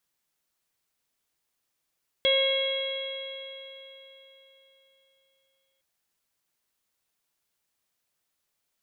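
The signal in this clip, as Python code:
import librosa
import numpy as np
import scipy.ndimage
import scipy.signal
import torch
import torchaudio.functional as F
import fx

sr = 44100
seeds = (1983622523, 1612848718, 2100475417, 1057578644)

y = fx.additive_stiff(sr, length_s=3.56, hz=537.0, level_db=-22.5, upper_db=(-19.0, -18, -6, -15.0, 1, -18), decay_s=3.73, stiffness=0.0015)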